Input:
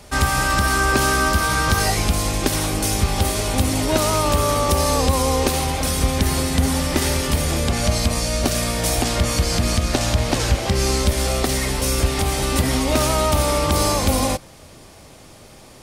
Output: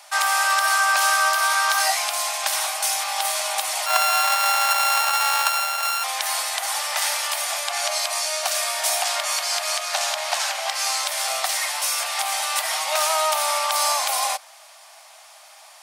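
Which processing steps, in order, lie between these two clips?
3.86–6.04 sample sorter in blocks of 32 samples; steep high-pass 640 Hz 72 dB/oct; gain +1 dB

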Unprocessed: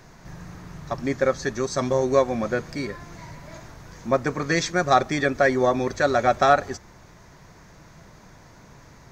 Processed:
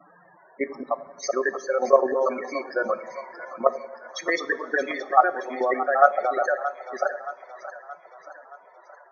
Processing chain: slices in reverse order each 0.119 s, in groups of 5; HPF 490 Hz 12 dB/oct; high shelf 4000 Hz -3 dB; AGC gain up to 7 dB; in parallel at -11 dB: soft clip -13.5 dBFS, distortion -11 dB; on the sum: loudest bins only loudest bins 16; level quantiser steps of 11 dB; split-band echo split 620 Hz, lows 89 ms, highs 0.624 s, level -12 dB; reverb, pre-delay 3 ms, DRR 14.5 dB

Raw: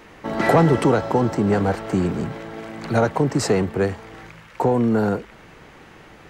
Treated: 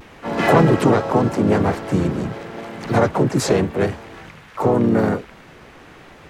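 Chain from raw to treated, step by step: harmoniser -3 st -5 dB, +4 st -7 dB, +7 st -12 dB; vibrato 0.83 Hz 46 cents

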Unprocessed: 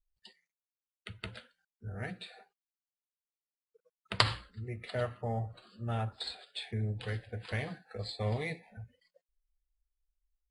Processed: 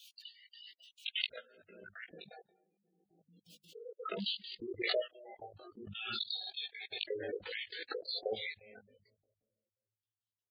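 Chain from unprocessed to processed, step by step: LFO high-pass square 1.2 Hz 360–3100 Hz; 6.09–6.68 flutter echo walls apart 10 m, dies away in 0.99 s; on a send at -19 dB: reverb RT60 1.6 s, pre-delay 10 ms; on the sum: step gate "x.xxx.xx.x.x." 169 bpm -60 dB; in parallel at -8 dB: soft clip -26.5 dBFS, distortion -16 dB; on the sum: spectral gate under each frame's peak -10 dB strong; 4.34–5.5 tilt +2.5 dB/oct; chorus 0.62 Hz, delay 17.5 ms, depth 2 ms; 1.11–2.08 transient shaper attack +5 dB, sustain -5 dB; notches 50/100/150/200 Hz; backwards sustainer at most 33 dB/s; gain +1 dB

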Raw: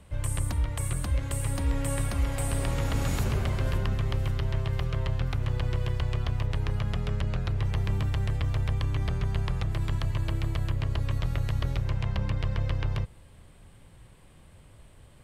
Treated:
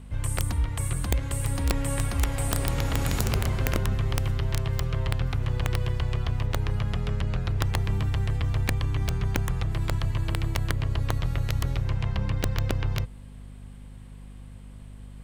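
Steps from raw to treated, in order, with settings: hum 50 Hz, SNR 17 dB; notch 590 Hz, Q 14; wrapped overs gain 17.5 dB; gain +1.5 dB

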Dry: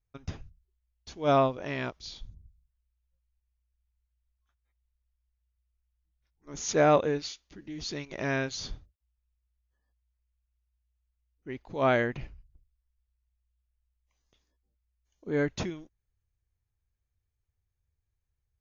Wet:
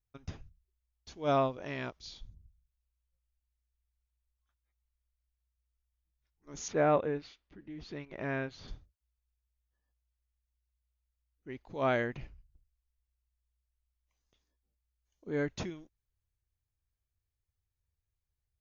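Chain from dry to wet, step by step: 6.68–8.68 LPF 2400 Hz 12 dB/oct; gain -5 dB

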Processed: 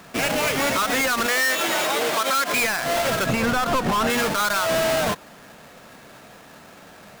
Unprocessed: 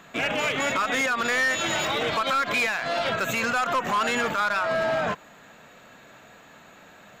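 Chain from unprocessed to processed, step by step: half-waves squared off; 1.26–2.54 HPF 290 Hz 12 dB/oct; 3.26–4.1 tilt -2 dB/oct

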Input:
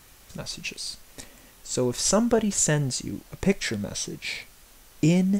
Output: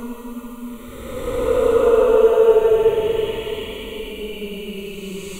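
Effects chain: fixed phaser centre 1100 Hz, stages 8; Paulstretch 20×, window 0.10 s, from 2.24; gain +7.5 dB

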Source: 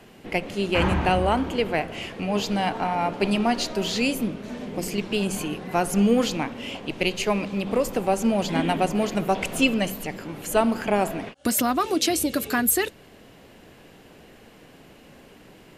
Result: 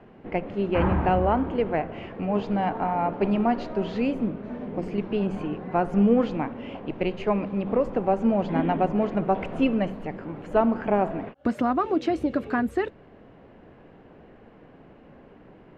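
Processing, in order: LPF 1400 Hz 12 dB/oct

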